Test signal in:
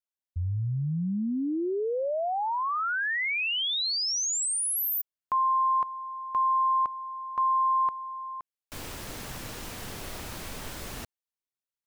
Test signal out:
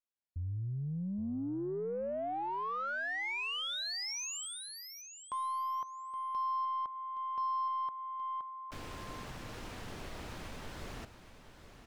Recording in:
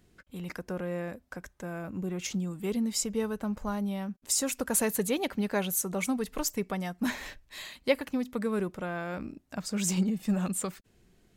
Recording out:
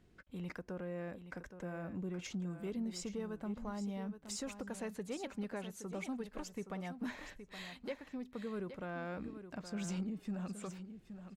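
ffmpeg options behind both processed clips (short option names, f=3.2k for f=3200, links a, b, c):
-filter_complex "[0:a]acrossover=split=8600[a][b];[b]acompressor=threshold=-44dB:ratio=4:attack=1:release=60[c];[a][c]amix=inputs=2:normalize=0,aemphasis=mode=reproduction:type=50kf,acompressor=threshold=-31dB:ratio=4:attack=0.21:release=749:knee=6:detection=rms,aecho=1:1:820|1640:0.282|0.0451,aeval=exprs='0.0531*(cos(1*acos(clip(val(0)/0.0531,-1,1)))-cos(1*PI/2))+0.000668*(cos(4*acos(clip(val(0)/0.0531,-1,1)))-cos(4*PI/2))+0.0015*(cos(5*acos(clip(val(0)/0.0531,-1,1)))-cos(5*PI/2))':c=same,volume=-4dB"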